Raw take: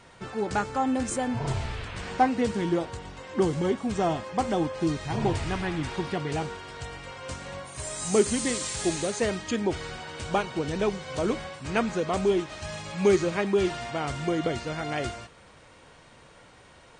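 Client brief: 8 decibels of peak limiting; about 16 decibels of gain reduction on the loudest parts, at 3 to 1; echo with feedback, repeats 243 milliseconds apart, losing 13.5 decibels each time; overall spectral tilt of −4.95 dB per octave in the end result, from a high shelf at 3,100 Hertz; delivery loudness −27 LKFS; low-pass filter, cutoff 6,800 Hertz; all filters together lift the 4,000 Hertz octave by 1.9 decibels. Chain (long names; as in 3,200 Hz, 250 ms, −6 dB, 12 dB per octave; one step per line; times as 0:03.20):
low-pass filter 6,800 Hz
high-shelf EQ 3,100 Hz −5.5 dB
parametric band 4,000 Hz +7 dB
downward compressor 3 to 1, threshold −39 dBFS
brickwall limiter −31.5 dBFS
repeating echo 243 ms, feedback 21%, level −13.5 dB
level +14 dB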